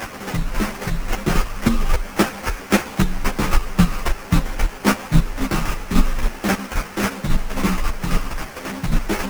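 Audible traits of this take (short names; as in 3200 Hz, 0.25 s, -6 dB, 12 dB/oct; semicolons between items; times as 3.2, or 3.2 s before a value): a quantiser's noise floor 6-bit, dither triangular; chopped level 3.7 Hz, depth 60%, duty 20%; aliases and images of a low sample rate 3900 Hz, jitter 20%; a shimmering, thickened sound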